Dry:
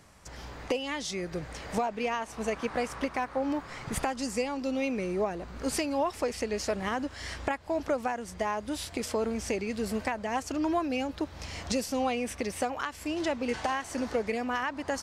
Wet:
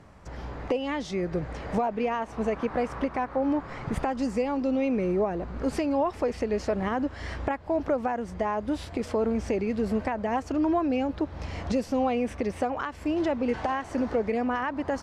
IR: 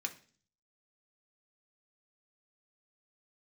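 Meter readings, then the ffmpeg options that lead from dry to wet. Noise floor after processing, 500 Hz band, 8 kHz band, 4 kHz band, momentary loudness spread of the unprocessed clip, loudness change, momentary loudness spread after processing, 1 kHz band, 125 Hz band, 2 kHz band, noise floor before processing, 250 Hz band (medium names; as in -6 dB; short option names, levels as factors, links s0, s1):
-43 dBFS, +4.0 dB, -10.0 dB, -5.5 dB, 5 LU, +3.5 dB, 6 LU, +2.5 dB, +6.0 dB, -1.0 dB, -46 dBFS, +5.0 dB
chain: -filter_complex "[0:a]lowpass=f=1000:p=1,asplit=2[s0][s1];[s1]alimiter=level_in=1.5:limit=0.0631:level=0:latency=1:release=112,volume=0.668,volume=1.26[s2];[s0][s2]amix=inputs=2:normalize=0"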